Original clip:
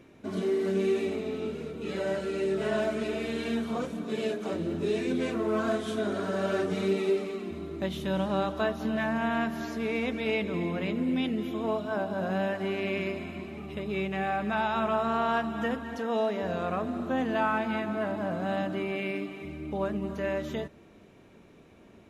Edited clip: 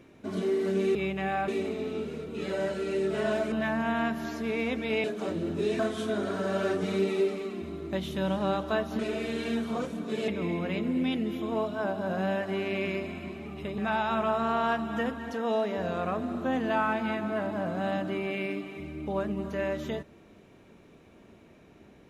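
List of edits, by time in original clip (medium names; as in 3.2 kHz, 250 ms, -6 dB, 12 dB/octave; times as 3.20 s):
2.99–4.28 s: swap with 8.88–10.40 s
5.03–5.68 s: delete
13.90–14.43 s: move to 0.95 s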